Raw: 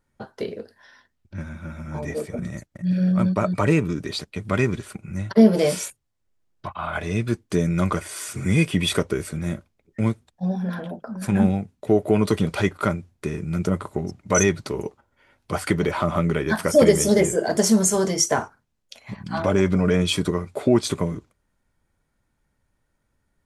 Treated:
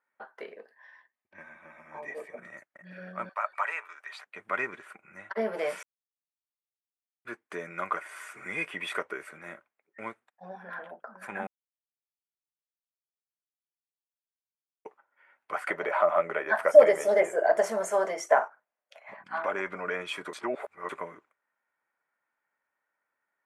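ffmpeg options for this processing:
ffmpeg -i in.wav -filter_complex "[0:a]asettb=1/sr,asplit=3[link_01][link_02][link_03];[link_01]atrim=end=0.534[link_04];[link_02]atrim=start=0.53:end=2.38,asetpts=PTS-STARTPTS,afade=type=in:duration=0.004:curve=qsin,afade=type=out:start_time=1.846:duration=0.004:curve=qsin,asuperstop=centerf=1400:order=4:qfactor=5.5[link_05];[link_03]atrim=start=2.376[link_06];[link_04][link_05]acrossfade=duration=0.004:curve1=hsin:curve2=qsin[link_07];[link_07][link_06]acrossfade=duration=0.004:curve1=qsin:curve2=hsin,asettb=1/sr,asplit=3[link_08][link_09][link_10];[link_08]atrim=end=3.294[link_11];[link_09]atrim=start=3.29:end=4.26,asetpts=PTS-STARTPTS,afade=type=in:duration=0.004:curve=qsin,afade=type=out:start_time=0.966:duration=0.004:curve=qsin,highpass=frequency=720:width=0.5412,highpass=frequency=720:width=1.3066[link_12];[link_10]atrim=start=4.256[link_13];[link_11][link_12]acrossfade=duration=0.004:curve1=hsin:curve2=qsin[link_14];[link_14][link_13]acrossfade=duration=0.004:curve1=qsin:curve2=hsin,asettb=1/sr,asplit=3[link_15][link_16][link_17];[link_15]atrim=end=15.684[link_18];[link_16]atrim=start=15.68:end=19.24,asetpts=PTS-STARTPTS,afade=type=in:duration=0.004:curve=qsin,afade=type=out:start_time=3.556:duration=0.004:curve=qsin,equalizer=frequency=620:width=2.1:gain=12[link_19];[link_17]atrim=start=19.236[link_20];[link_18][link_19]acrossfade=duration=0.004:curve1=hsin:curve2=qsin[link_21];[link_21][link_20]acrossfade=duration=0.004:curve1=qsin:curve2=hsin,asplit=7[link_22][link_23][link_24][link_25][link_26][link_27][link_28];[link_22]atrim=end=5.83,asetpts=PTS-STARTPTS,afade=type=out:start_time=5.826:duration=0.004:curve=hsin[link_29];[link_23]atrim=start=5.83:end=7.25,asetpts=PTS-STARTPTS,volume=0[link_30];[link_24]atrim=start=7.25:end=11.47,asetpts=PTS-STARTPTS,afade=type=in:duration=0.004:curve=hsin,afade=type=out:start_time=4.216:duration=0.004:curve=hsin[link_31];[link_25]atrim=start=11.47:end=14.85,asetpts=PTS-STARTPTS,volume=0[link_32];[link_26]atrim=start=14.85:end=20.332,asetpts=PTS-STARTPTS,afade=type=in:duration=0.004:curve=hsin[link_33];[link_27]atrim=start=20.328:end=20.892,asetpts=PTS-STARTPTS,areverse[link_34];[link_28]atrim=start=20.888[link_35];[link_29][link_30][link_31][link_32][link_33]concat=n=5:v=0:a=1[link_36];[link_36][link_34]acrossfade=duration=0.004:curve1=hsin:curve2=hsin[link_37];[link_37][link_35]acrossfade=duration=0.004:curve1=hsin:curve2=hsin,highpass=760,highshelf=frequency=2900:width_type=q:width=1.5:gain=-14,volume=-3.5dB" out.wav

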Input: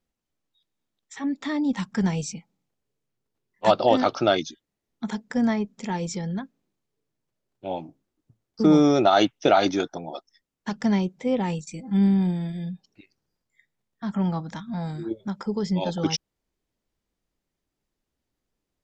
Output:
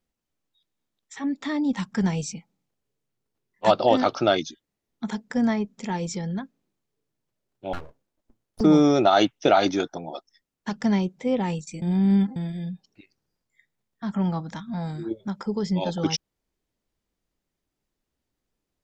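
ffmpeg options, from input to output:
ffmpeg -i in.wav -filter_complex "[0:a]asettb=1/sr,asplit=3[link_01][link_02][link_03];[link_01]atrim=end=7.734[link_04];[link_02]atrim=start=7.73:end=8.61,asetpts=PTS-STARTPTS,afade=type=in:duration=0.004:curve=qsin,afade=type=out:start_time=0.876:duration=0.004:curve=qsin,aeval=exprs='abs(val(0))':channel_layout=same[link_05];[link_03]atrim=start=8.606[link_06];[link_04][link_05]acrossfade=duration=0.004:curve1=hsin:curve2=qsin[link_07];[link_07][link_06]acrossfade=duration=0.004:curve1=qsin:curve2=hsin,asplit=3[link_08][link_09][link_10];[link_08]atrim=end=11.822[link_11];[link_09]atrim=start=11.818:end=12.362,asetpts=PTS-STARTPTS,areverse[link_12];[link_10]atrim=start=12.358[link_13];[link_11][link_12]acrossfade=duration=0.004:curve1=hsin:curve2=hsin[link_14];[link_14][link_13]acrossfade=duration=0.004:curve1=hsin:curve2=hsin" out.wav

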